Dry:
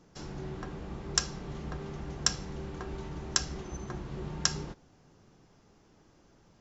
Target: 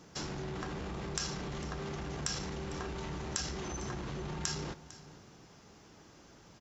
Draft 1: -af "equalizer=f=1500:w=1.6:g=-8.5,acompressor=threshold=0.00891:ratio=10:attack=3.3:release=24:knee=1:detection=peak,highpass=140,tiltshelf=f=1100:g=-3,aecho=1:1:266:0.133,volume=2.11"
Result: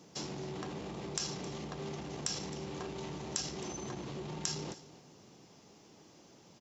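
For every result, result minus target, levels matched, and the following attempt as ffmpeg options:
echo 186 ms early; 2 kHz band -4.0 dB; 125 Hz band -2.0 dB
-af "acompressor=threshold=0.00891:ratio=10:attack=3.3:release=24:knee=1:detection=peak,highpass=140,tiltshelf=f=1100:g=-3,aecho=1:1:452:0.133,volume=2.11"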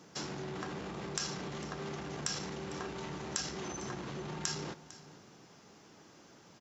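125 Hz band -3.0 dB
-af "acompressor=threshold=0.00891:ratio=10:attack=3.3:release=24:knee=1:detection=peak,highpass=44,tiltshelf=f=1100:g=-3,aecho=1:1:452:0.133,volume=2.11"

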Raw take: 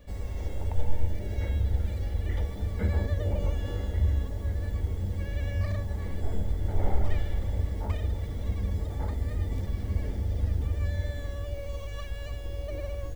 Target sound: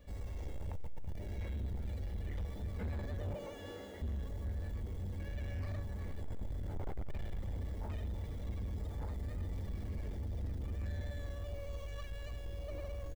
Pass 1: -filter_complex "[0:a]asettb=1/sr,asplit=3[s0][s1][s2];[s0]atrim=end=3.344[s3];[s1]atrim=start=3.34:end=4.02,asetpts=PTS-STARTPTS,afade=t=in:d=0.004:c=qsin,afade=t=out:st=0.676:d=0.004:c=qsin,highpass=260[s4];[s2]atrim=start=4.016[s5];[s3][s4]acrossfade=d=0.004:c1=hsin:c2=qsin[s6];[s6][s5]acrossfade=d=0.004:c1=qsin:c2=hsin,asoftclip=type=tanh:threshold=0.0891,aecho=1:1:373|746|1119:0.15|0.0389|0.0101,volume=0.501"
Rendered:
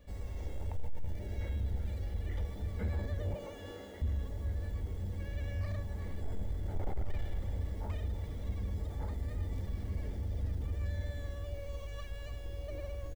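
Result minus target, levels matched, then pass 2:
saturation: distortion -6 dB
-filter_complex "[0:a]asettb=1/sr,asplit=3[s0][s1][s2];[s0]atrim=end=3.344[s3];[s1]atrim=start=3.34:end=4.02,asetpts=PTS-STARTPTS,afade=t=in:d=0.004:c=qsin,afade=t=out:st=0.676:d=0.004:c=qsin,highpass=260[s4];[s2]atrim=start=4.016[s5];[s3][s4]acrossfade=d=0.004:c1=hsin:c2=qsin[s6];[s6][s5]acrossfade=d=0.004:c1=qsin:c2=hsin,asoftclip=type=tanh:threshold=0.0355,aecho=1:1:373|746|1119:0.15|0.0389|0.0101,volume=0.501"

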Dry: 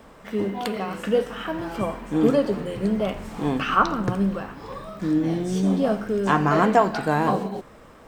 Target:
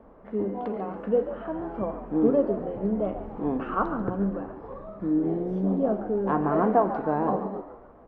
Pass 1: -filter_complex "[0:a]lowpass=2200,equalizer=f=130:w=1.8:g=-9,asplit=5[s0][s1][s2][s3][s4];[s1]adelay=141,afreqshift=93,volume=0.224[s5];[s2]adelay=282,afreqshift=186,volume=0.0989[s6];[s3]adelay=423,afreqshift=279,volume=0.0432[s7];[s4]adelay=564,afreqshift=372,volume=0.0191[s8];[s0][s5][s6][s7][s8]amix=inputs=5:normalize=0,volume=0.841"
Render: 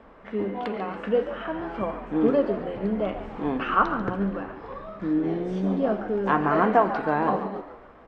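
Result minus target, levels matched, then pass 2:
2 kHz band +9.0 dB
-filter_complex "[0:a]lowpass=840,equalizer=f=130:w=1.8:g=-9,asplit=5[s0][s1][s2][s3][s4];[s1]adelay=141,afreqshift=93,volume=0.224[s5];[s2]adelay=282,afreqshift=186,volume=0.0989[s6];[s3]adelay=423,afreqshift=279,volume=0.0432[s7];[s4]adelay=564,afreqshift=372,volume=0.0191[s8];[s0][s5][s6][s7][s8]amix=inputs=5:normalize=0,volume=0.841"

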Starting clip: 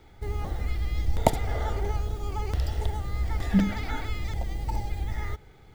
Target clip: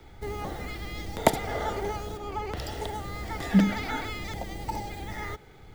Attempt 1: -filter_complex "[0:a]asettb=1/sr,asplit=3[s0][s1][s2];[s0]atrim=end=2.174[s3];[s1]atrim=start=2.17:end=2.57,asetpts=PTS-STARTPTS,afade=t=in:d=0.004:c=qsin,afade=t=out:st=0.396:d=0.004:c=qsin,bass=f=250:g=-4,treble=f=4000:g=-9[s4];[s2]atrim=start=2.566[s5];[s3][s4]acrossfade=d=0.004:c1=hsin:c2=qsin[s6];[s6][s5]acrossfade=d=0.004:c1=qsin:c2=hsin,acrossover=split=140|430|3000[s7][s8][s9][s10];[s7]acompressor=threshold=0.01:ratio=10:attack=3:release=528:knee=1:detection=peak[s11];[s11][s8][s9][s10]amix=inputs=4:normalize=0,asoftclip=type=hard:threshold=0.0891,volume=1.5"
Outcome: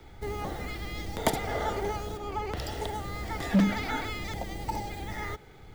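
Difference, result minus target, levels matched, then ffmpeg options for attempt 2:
hard clipper: distortion +7 dB
-filter_complex "[0:a]asettb=1/sr,asplit=3[s0][s1][s2];[s0]atrim=end=2.174[s3];[s1]atrim=start=2.17:end=2.57,asetpts=PTS-STARTPTS,afade=t=in:d=0.004:c=qsin,afade=t=out:st=0.396:d=0.004:c=qsin,bass=f=250:g=-4,treble=f=4000:g=-9[s4];[s2]atrim=start=2.566[s5];[s3][s4]acrossfade=d=0.004:c1=hsin:c2=qsin[s6];[s6][s5]acrossfade=d=0.004:c1=qsin:c2=hsin,acrossover=split=140|430|3000[s7][s8][s9][s10];[s7]acompressor=threshold=0.01:ratio=10:attack=3:release=528:knee=1:detection=peak[s11];[s11][s8][s9][s10]amix=inputs=4:normalize=0,asoftclip=type=hard:threshold=0.266,volume=1.5"

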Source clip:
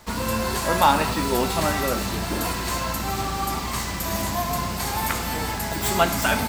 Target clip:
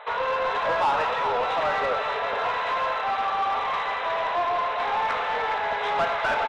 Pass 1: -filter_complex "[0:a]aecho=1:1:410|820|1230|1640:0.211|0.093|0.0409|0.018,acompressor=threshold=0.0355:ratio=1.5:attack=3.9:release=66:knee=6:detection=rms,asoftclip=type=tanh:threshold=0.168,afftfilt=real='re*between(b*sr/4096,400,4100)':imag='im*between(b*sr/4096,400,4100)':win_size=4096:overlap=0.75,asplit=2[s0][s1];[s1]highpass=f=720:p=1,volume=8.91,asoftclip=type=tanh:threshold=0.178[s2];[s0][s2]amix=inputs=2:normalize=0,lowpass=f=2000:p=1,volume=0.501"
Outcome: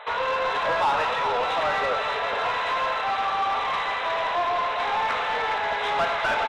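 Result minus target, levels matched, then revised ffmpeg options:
4 kHz band +3.0 dB
-filter_complex "[0:a]aecho=1:1:410|820|1230|1640:0.211|0.093|0.0409|0.018,acompressor=threshold=0.0355:ratio=1.5:attack=3.9:release=66:knee=6:detection=rms,highshelf=f=2700:g=-7.5,asoftclip=type=tanh:threshold=0.168,afftfilt=real='re*between(b*sr/4096,400,4100)':imag='im*between(b*sr/4096,400,4100)':win_size=4096:overlap=0.75,asplit=2[s0][s1];[s1]highpass=f=720:p=1,volume=8.91,asoftclip=type=tanh:threshold=0.178[s2];[s0][s2]amix=inputs=2:normalize=0,lowpass=f=2000:p=1,volume=0.501"

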